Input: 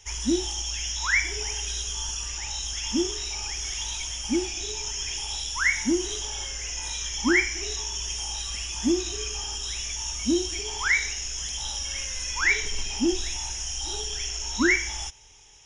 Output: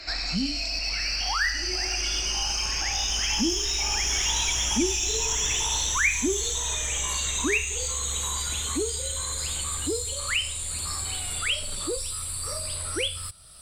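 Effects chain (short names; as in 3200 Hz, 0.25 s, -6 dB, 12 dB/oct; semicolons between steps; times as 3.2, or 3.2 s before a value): speed glide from 75% -> 155%; Doppler pass-by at 4.72, 5 m/s, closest 6.4 m; in parallel at -6 dB: soft clip -35.5 dBFS, distortion -5 dB; on the sum: three-band squash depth 70%; gain +5.5 dB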